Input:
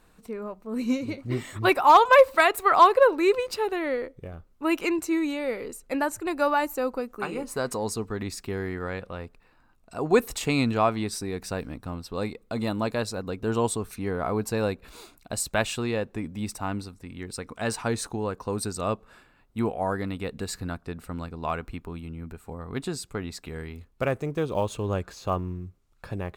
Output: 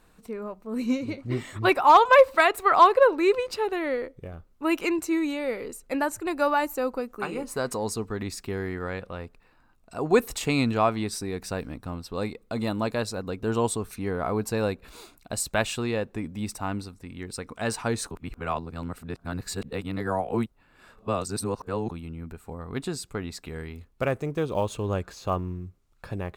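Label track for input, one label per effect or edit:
0.860000	3.730000	high shelf 9300 Hz -7 dB
18.110000	21.910000	reverse

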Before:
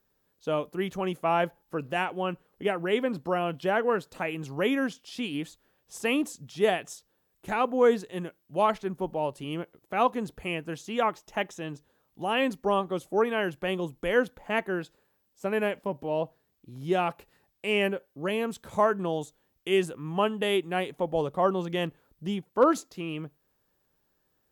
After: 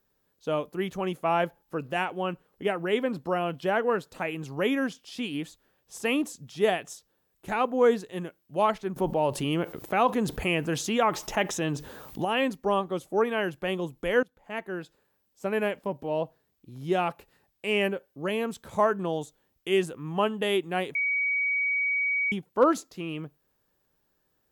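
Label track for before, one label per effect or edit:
8.960000	12.250000	fast leveller amount 50%
14.230000	15.500000	fade in equal-power, from -21.5 dB
20.950000	22.320000	bleep 2260 Hz -23.5 dBFS

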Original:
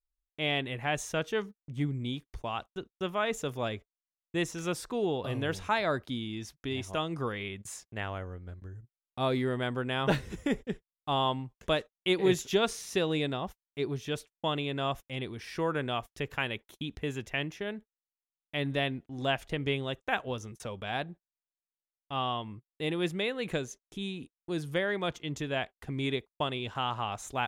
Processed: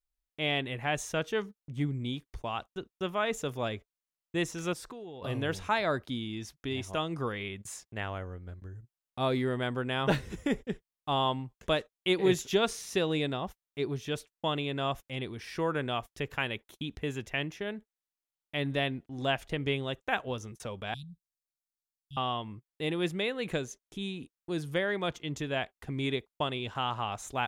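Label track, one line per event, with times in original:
4.730000	5.220000	compressor 12:1, threshold -40 dBFS
20.940000	22.170000	inverse Chebyshev band-stop 380–1900 Hz, stop band 50 dB

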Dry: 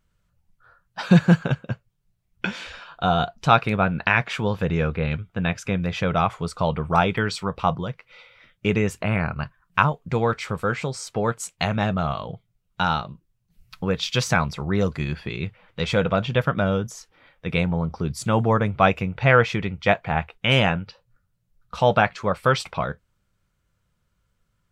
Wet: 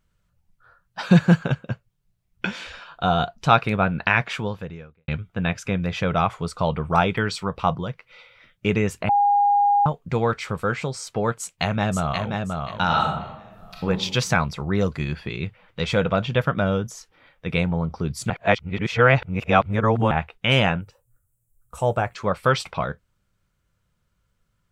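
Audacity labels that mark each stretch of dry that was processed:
4.320000	5.080000	fade out quadratic
9.090000	9.860000	bleep 814 Hz -14.5 dBFS
11.380000	12.270000	echo throw 0.53 s, feedback 25%, level -4 dB
12.860000	13.870000	reverb throw, RT60 0.85 s, DRR -2 dB
18.300000	20.110000	reverse
20.810000	22.150000	EQ curve 120 Hz 0 dB, 180 Hz -11 dB, 340 Hz -1 dB, 2600 Hz -11 dB, 4600 Hz -17 dB, 7900 Hz +13 dB

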